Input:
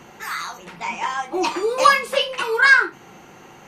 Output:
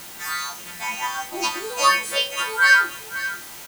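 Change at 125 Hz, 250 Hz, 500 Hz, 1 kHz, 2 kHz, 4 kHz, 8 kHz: n/a, -7.5 dB, -9.0 dB, -3.0 dB, -1.5 dB, +1.5 dB, +6.0 dB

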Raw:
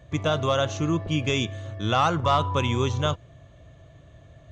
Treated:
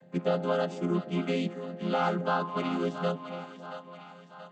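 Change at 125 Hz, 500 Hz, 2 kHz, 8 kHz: -10.0 dB, -3.0 dB, -6.0 dB, n/a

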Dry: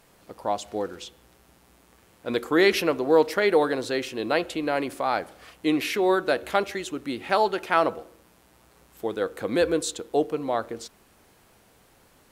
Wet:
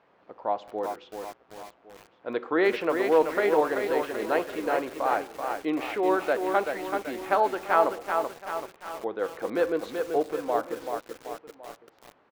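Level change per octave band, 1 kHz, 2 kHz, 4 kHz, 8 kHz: +0.5, -3.0, -9.5, -9.5 dB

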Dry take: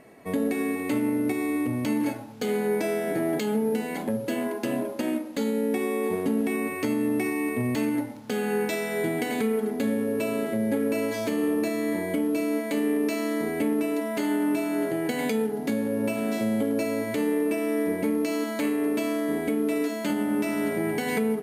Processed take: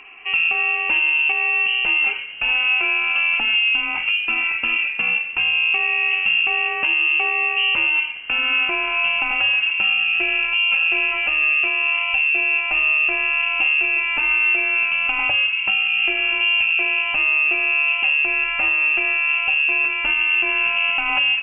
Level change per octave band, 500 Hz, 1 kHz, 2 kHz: -11.0, +6.5, +20.5 dB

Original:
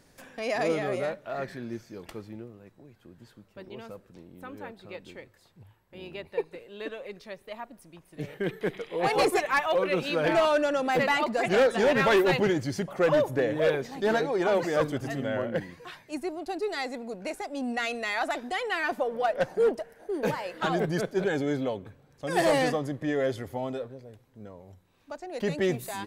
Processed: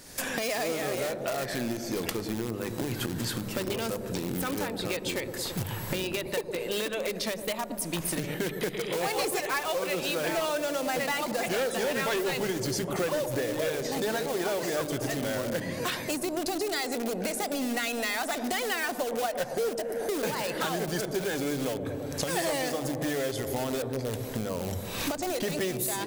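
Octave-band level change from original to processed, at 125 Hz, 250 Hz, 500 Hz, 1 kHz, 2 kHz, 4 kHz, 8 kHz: +1.0, -0.5, -3.0, -3.0, -1.5, +4.0, +11.0 dB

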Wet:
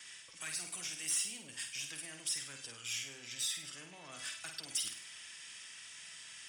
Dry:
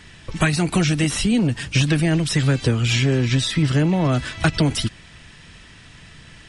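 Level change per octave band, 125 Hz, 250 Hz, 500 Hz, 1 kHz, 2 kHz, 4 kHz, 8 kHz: under -40 dB, -39.0 dB, -33.5 dB, -26.0 dB, -19.5 dB, -14.5 dB, -6.5 dB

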